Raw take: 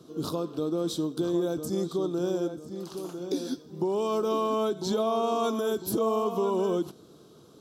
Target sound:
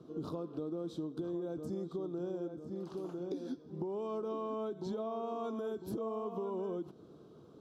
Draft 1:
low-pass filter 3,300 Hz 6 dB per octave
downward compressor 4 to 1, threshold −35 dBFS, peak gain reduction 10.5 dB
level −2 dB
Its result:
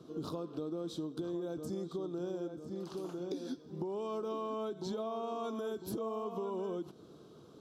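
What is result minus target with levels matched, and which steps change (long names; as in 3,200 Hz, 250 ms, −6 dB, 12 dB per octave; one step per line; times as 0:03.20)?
4,000 Hz band +6.5 dB
change: low-pass filter 1,100 Hz 6 dB per octave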